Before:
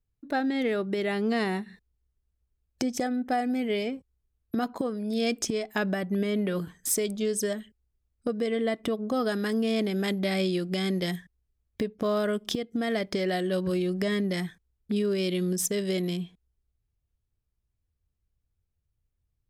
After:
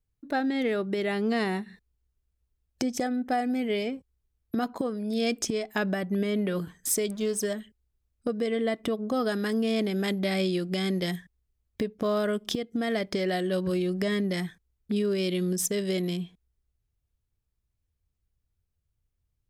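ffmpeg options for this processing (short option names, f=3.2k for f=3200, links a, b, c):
-filter_complex "[0:a]asettb=1/sr,asplit=3[a][b][c];[a]atrim=end=7.114[d];[b]atrim=start=7.11:end=7.53,asetpts=PTS-STARTPTS,afade=t=in:d=0.004:c=qsin,afade=t=out:st=0.416:d=0.004:c=qsin,aeval=exprs='sgn(val(0))*max(abs(val(0))-0.00316,0)':c=same[e];[c]atrim=start=7.526[f];[d][e]acrossfade=d=0.004:c1=hsin:c2=qsin[g];[g][f]acrossfade=d=0.004:c1=qsin:c2=hsin"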